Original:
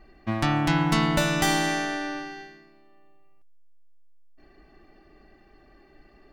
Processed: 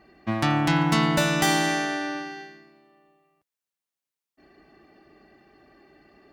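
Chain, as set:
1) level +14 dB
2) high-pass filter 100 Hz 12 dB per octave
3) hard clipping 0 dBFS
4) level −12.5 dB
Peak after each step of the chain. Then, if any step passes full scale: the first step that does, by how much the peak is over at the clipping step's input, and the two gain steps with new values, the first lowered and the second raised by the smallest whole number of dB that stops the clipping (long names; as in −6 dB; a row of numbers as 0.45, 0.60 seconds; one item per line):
+7.0, +7.0, 0.0, −12.5 dBFS
step 1, 7.0 dB
step 1 +7 dB, step 4 −5.5 dB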